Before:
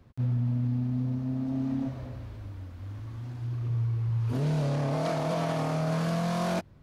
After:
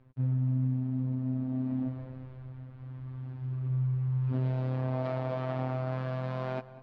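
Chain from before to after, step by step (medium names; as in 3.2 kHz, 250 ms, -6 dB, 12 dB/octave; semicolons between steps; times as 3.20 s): robot voice 129 Hz; distance through air 370 m; on a send: tape echo 194 ms, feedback 51%, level -15 dB, low-pass 5.5 kHz; on the sum: trim -1 dB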